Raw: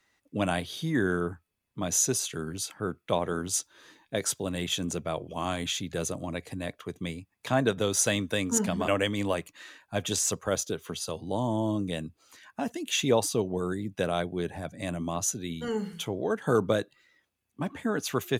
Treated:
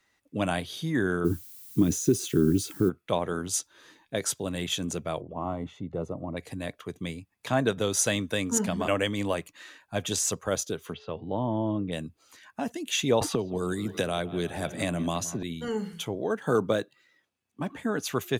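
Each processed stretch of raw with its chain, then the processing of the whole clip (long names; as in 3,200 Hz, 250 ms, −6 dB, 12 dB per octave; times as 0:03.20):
0:01.24–0:02.88: downward compressor, threshold −29 dBFS + low shelf with overshoot 470 Hz +11 dB, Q 3 + background noise violet −47 dBFS
0:05.21–0:06.37: de-essing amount 30% + Savitzky-Golay smoothing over 65 samples
0:10.92–0:11.91: low-pass filter 2,900 Hz 24 dB per octave + steady tone 430 Hz −55 dBFS
0:13.21–0:15.43: bucket-brigade delay 166 ms, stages 4,096, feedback 69%, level −19 dB + multiband upward and downward compressor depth 100%
0:16.15–0:17.78: running median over 3 samples + high-pass filter 110 Hz + notch filter 2,100 Hz, Q 29
whole clip: no processing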